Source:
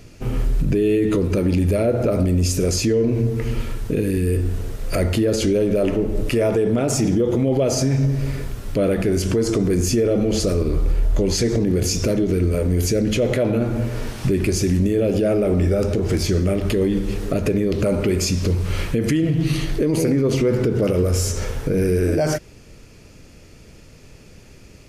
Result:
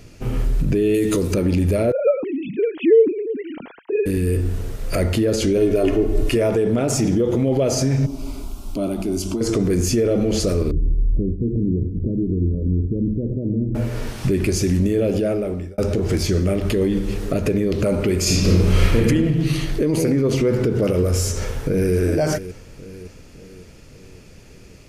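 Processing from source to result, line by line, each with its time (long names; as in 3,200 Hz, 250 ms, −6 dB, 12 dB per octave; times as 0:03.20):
0:00.94–0:01.34: bass and treble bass −2 dB, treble +13 dB
0:01.92–0:04.06: three sine waves on the formant tracks
0:05.57–0:06.36: comb filter 2.8 ms
0:08.06–0:09.41: phaser with its sweep stopped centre 480 Hz, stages 6
0:10.71–0:13.75: inverse Chebyshev low-pass filter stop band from 2,000 Hz, stop band 80 dB
0:14.91–0:15.78: fade out equal-power
0:18.21–0:19.00: thrown reverb, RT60 1.2 s, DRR −4.5 dB
0:21.37–0:21.95: delay throw 560 ms, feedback 55%, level −13.5 dB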